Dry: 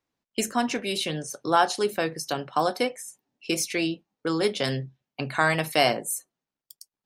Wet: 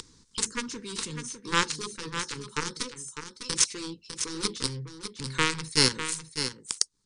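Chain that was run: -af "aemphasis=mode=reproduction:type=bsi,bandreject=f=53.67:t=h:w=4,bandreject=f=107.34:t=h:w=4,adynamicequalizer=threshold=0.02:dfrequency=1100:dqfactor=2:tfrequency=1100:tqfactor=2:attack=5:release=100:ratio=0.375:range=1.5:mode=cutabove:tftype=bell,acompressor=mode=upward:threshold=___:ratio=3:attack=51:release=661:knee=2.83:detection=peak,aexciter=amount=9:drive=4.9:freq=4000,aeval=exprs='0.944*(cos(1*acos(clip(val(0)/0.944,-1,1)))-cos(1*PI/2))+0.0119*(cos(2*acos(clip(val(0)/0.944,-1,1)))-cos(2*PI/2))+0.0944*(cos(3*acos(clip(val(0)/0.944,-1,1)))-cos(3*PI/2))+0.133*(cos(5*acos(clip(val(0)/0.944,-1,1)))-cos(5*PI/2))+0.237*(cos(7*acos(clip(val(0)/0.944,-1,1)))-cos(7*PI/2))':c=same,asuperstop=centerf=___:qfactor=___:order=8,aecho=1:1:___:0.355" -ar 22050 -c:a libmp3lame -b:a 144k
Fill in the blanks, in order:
-33dB, 670, 1.8, 602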